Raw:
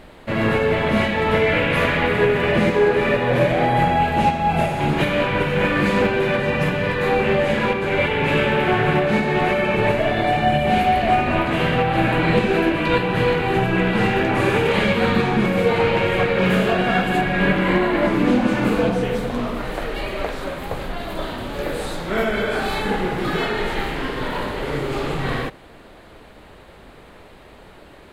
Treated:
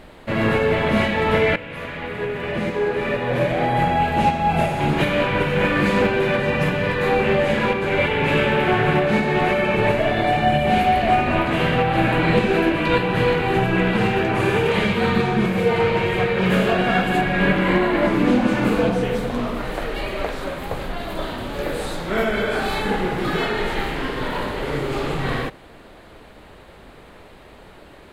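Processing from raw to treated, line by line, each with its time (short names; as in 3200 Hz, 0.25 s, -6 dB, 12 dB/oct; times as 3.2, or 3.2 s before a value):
1.56–4.38 fade in, from -16.5 dB
13.97–16.52 notch comb 280 Hz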